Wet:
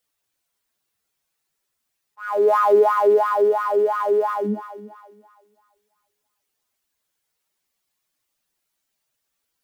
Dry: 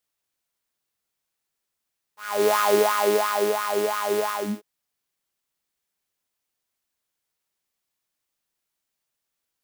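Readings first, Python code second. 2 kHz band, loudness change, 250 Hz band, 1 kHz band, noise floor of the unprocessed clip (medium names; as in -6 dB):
-2.5 dB, +4.0 dB, +2.0 dB, +4.5 dB, -82 dBFS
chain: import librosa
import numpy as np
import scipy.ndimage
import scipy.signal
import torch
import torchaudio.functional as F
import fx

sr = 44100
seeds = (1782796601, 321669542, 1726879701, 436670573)

y = fx.spec_expand(x, sr, power=1.8)
y = fx.echo_thinned(y, sr, ms=335, feedback_pct=37, hz=370.0, wet_db=-11.5)
y = y * 10.0 ** (4.0 / 20.0)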